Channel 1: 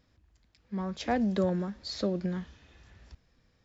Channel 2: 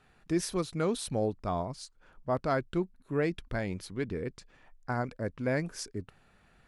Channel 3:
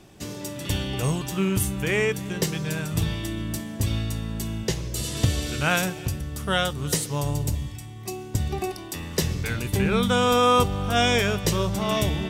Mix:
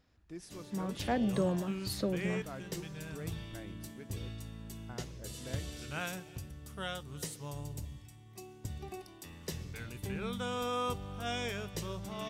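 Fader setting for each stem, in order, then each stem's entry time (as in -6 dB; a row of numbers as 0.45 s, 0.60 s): -3.5 dB, -17.0 dB, -16.0 dB; 0.00 s, 0.00 s, 0.30 s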